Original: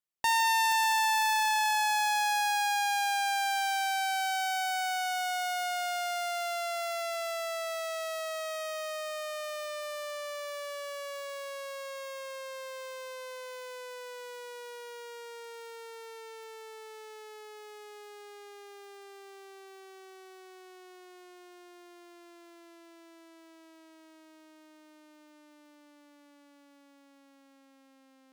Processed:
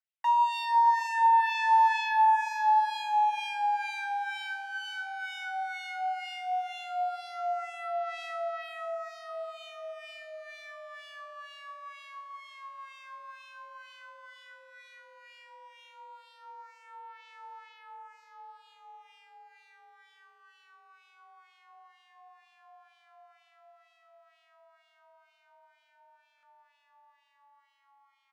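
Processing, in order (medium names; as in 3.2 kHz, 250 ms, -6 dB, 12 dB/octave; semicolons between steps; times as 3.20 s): ladder high-pass 610 Hz, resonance 50%; comb 4.7 ms, depth 93%; frequency shift +43 Hz; LFO band-pass sine 2.1 Hz 800–2900 Hz; feedback delay 608 ms, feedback 38%, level -17.5 dB; buffer glitch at 26.36 s, samples 1024, times 2; trim +7.5 dB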